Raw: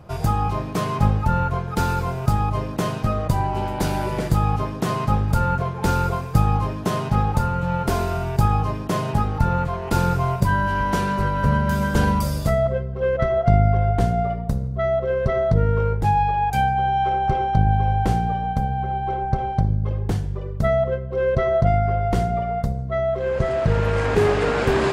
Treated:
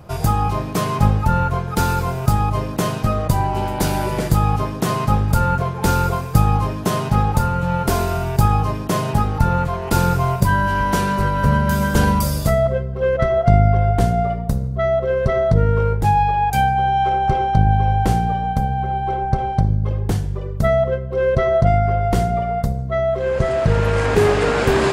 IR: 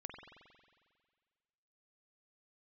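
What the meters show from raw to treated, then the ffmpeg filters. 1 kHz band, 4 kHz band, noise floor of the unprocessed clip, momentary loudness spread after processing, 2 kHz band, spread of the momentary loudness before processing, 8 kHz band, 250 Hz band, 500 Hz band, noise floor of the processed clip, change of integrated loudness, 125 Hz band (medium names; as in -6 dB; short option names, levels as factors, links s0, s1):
+3.0 dB, +4.5 dB, -29 dBFS, 5 LU, +3.5 dB, 5 LU, +7.0 dB, +3.0 dB, +3.0 dB, -26 dBFS, +3.0 dB, +3.0 dB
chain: -af "highshelf=f=6900:g=7.5,volume=1.41"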